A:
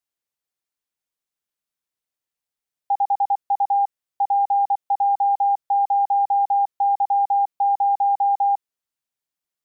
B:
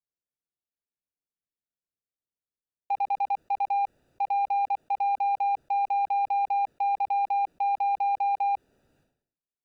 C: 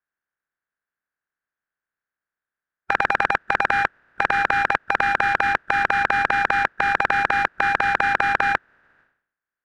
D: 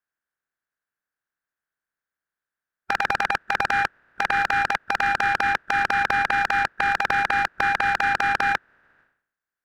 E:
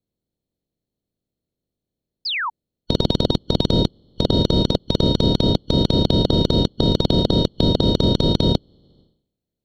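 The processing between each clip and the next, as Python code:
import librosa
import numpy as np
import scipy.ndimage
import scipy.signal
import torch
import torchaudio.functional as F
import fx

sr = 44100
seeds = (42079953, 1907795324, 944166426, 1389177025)

y1 = fx.wiener(x, sr, points=41)
y1 = fx.sustainer(y1, sr, db_per_s=92.0)
y1 = y1 * 10.0 ** (-3.5 / 20.0)
y2 = fx.spec_flatten(y1, sr, power=0.21)
y2 = fx.lowpass_res(y2, sr, hz=1600.0, q=6.1)
y2 = y2 * 10.0 ** (7.0 / 20.0)
y3 = np.clip(10.0 ** (11.5 / 20.0) * y2, -1.0, 1.0) / 10.0 ** (11.5 / 20.0)
y3 = y3 * 10.0 ** (-1.0 / 20.0)
y4 = fx.band_shuffle(y3, sr, order='2413')
y4 = fx.low_shelf_res(y4, sr, hz=770.0, db=10.5, q=1.5)
y4 = fx.spec_paint(y4, sr, seeds[0], shape='fall', start_s=2.25, length_s=0.25, low_hz=850.0, high_hz=5300.0, level_db=-21.0)
y4 = y4 * 10.0 ** (-2.5 / 20.0)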